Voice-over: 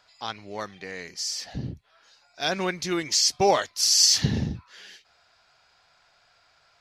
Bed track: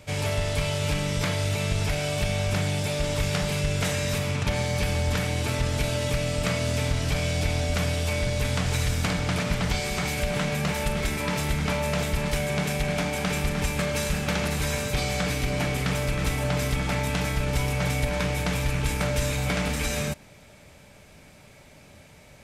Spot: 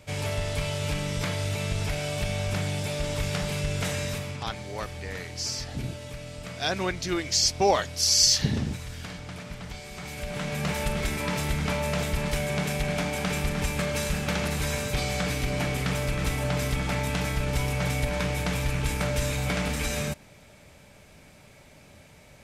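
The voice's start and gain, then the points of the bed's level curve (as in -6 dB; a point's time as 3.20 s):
4.20 s, -1.5 dB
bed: 4.02 s -3 dB
4.60 s -13 dB
9.87 s -13 dB
10.70 s -1.5 dB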